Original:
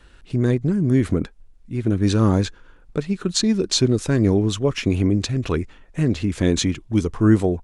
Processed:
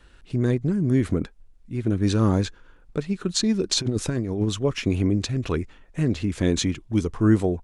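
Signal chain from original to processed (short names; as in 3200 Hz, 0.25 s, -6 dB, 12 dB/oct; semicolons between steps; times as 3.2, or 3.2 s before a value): 3.7–4.49 negative-ratio compressor -20 dBFS, ratio -0.5; gain -3 dB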